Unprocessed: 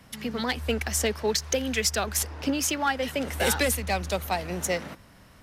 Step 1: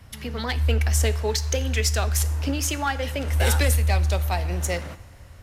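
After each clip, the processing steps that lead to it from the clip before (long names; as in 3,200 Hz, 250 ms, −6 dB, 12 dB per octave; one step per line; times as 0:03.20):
low shelf with overshoot 130 Hz +10 dB, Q 1.5
coupled-rooms reverb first 0.57 s, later 3.9 s, from −20 dB, DRR 11.5 dB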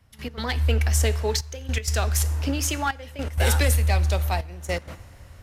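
gate pattern "..x.xxxxxxxxxxx." 160 BPM −12 dB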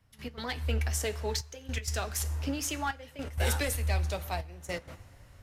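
flanger 1.9 Hz, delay 6.3 ms, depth 2.1 ms, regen −58%
level −3 dB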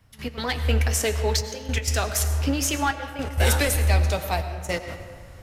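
comb and all-pass reverb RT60 1.9 s, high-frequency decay 0.5×, pre-delay 65 ms, DRR 9.5 dB
level +8.5 dB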